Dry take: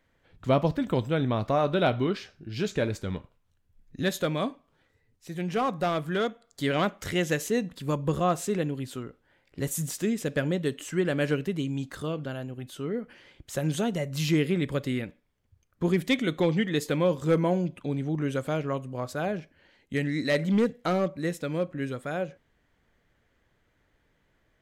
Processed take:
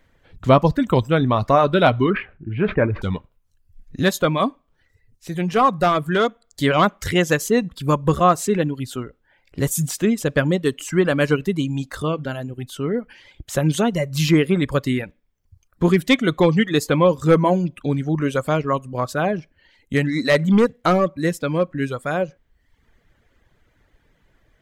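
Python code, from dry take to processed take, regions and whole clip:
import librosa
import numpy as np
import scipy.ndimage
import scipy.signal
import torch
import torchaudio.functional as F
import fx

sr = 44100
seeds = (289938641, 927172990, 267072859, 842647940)

y = fx.chain(x, sr, fx.steep_lowpass(hz=2400.0, slope=36),
    fx.sustainer(db_per_s=130.0), at=(2.1, 3.02))
y = fx.dynamic_eq(y, sr, hz=1100.0, q=2.3, threshold_db=-47.0, ratio=4.0, max_db=6)
y = fx.dereverb_blind(y, sr, rt60_s=0.77)
y = fx.low_shelf(y, sr, hz=71.0, db=7.5)
y = y * 10.0 ** (8.5 / 20.0)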